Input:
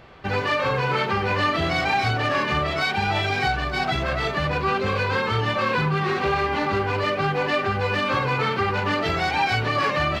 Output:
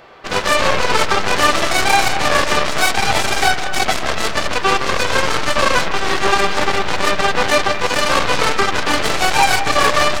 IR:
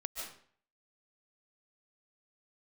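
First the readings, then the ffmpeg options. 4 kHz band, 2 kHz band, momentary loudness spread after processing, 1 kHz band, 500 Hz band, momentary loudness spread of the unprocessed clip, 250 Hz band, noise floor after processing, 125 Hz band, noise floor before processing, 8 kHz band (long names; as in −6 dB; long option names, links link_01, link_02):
+10.0 dB, +7.0 dB, 4 LU, +6.5 dB, +5.5 dB, 2 LU, +3.0 dB, −20 dBFS, −3.5 dB, −27 dBFS, +22.5 dB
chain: -filter_complex "[0:a]bass=frequency=250:gain=-14,treble=frequency=4000:gain=4,acontrast=79,aeval=exprs='0.562*(cos(1*acos(clip(val(0)/0.562,-1,1)))-cos(1*PI/2))+0.141*(cos(7*acos(clip(val(0)/0.562,-1,1)))-cos(7*PI/2))+0.0355*(cos(8*acos(clip(val(0)/0.562,-1,1)))-cos(8*PI/2))':channel_layout=same,asplit=2[link_01][link_02];[1:a]atrim=start_sample=2205,lowpass=2100[link_03];[link_02][link_03]afir=irnorm=-1:irlink=0,volume=-5.5dB[link_04];[link_01][link_04]amix=inputs=2:normalize=0"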